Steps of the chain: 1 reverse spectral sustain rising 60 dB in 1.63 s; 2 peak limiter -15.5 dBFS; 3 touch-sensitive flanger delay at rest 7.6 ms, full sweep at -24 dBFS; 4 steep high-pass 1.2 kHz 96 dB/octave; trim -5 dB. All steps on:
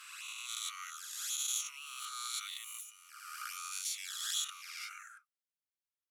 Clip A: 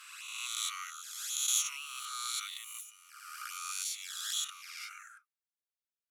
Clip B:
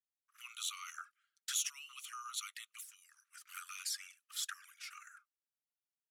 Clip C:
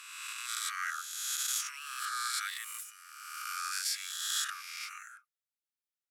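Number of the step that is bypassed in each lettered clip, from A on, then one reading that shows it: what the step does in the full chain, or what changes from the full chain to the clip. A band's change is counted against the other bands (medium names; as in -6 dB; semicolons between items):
2, mean gain reduction 1.5 dB; 1, crest factor change +5.0 dB; 3, 2 kHz band +5.5 dB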